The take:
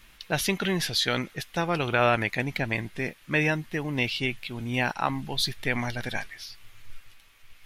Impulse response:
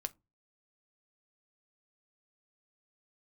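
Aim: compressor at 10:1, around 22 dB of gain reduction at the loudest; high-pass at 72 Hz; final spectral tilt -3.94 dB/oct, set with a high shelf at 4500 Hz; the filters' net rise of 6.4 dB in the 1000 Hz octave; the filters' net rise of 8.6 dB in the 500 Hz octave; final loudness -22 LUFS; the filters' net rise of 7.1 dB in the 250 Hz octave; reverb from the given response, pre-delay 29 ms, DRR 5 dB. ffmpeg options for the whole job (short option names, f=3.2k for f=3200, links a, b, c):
-filter_complex "[0:a]highpass=72,equalizer=f=250:t=o:g=6.5,equalizer=f=500:t=o:g=7.5,equalizer=f=1k:t=o:g=6,highshelf=f=4.5k:g=-6.5,acompressor=threshold=-33dB:ratio=10,asplit=2[a][b];[1:a]atrim=start_sample=2205,adelay=29[c];[b][c]afir=irnorm=-1:irlink=0,volume=-3.5dB[d];[a][d]amix=inputs=2:normalize=0,volume=15dB"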